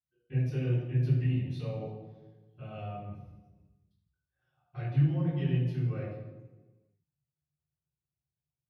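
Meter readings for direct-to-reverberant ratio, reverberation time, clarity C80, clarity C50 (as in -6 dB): -24.5 dB, 1.2 s, 2.5 dB, 0.0 dB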